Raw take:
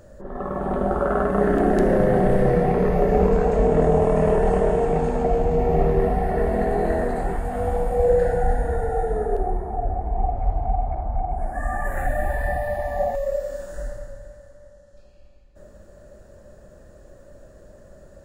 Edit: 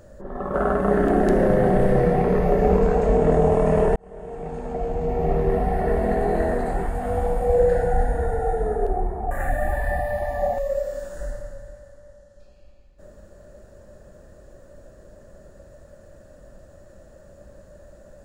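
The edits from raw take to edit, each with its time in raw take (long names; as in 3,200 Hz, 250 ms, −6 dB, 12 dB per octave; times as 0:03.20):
0:00.54–0:01.04: remove
0:04.46–0:06.28: fade in
0:09.81–0:11.88: remove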